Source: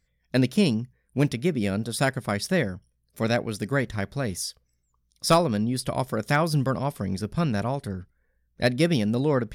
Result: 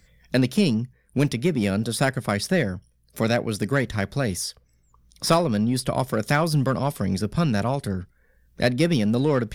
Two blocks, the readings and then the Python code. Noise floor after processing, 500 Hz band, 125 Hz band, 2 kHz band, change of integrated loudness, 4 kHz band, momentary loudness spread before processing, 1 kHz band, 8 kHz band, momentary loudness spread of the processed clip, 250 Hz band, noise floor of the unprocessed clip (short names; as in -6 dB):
-63 dBFS, +1.5 dB, +2.5 dB, +2.0 dB, +2.0 dB, +2.0 dB, 9 LU, +1.0 dB, +2.0 dB, 7 LU, +2.5 dB, -72 dBFS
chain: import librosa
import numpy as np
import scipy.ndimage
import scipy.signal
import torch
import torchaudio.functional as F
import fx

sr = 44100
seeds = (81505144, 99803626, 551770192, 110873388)

p1 = np.clip(10.0 ** (24.5 / 20.0) * x, -1.0, 1.0) / 10.0 ** (24.5 / 20.0)
p2 = x + (p1 * librosa.db_to_amplitude(-6.0))
y = fx.band_squash(p2, sr, depth_pct=40)